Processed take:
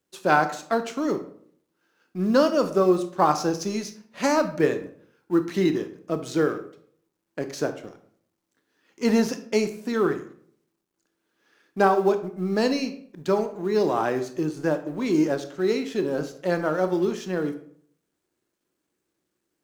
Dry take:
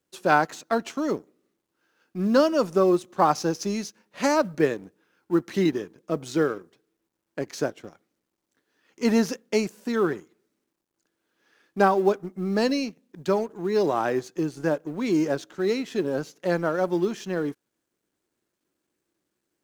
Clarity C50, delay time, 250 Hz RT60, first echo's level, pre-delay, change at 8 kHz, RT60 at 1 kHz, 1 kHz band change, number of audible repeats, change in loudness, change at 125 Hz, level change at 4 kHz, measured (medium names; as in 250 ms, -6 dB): 12.0 dB, no echo, 0.70 s, no echo, 22 ms, +0.5 dB, 0.55 s, +0.5 dB, no echo, +0.5 dB, +0.5 dB, +0.5 dB